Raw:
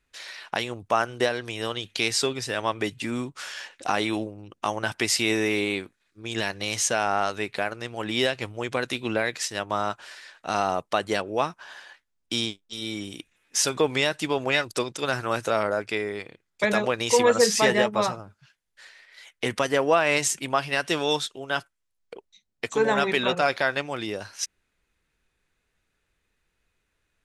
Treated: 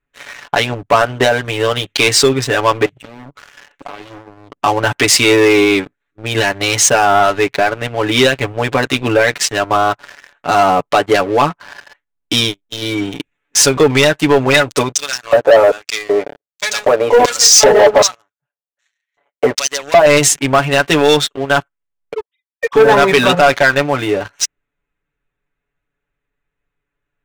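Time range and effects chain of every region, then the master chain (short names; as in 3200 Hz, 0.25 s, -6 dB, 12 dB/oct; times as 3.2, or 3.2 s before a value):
2.85–4.5 compressor 4:1, threshold -42 dBFS + Doppler distortion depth 0.86 ms
14.94–20.06 sample leveller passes 3 + LFO band-pass square 1.3 Hz 600–6000 Hz
22.15–22.75 sine-wave speech + steep high-pass 300 Hz 72 dB/oct
whole clip: Wiener smoothing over 9 samples; comb 7 ms, depth 83%; sample leveller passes 3; gain +2.5 dB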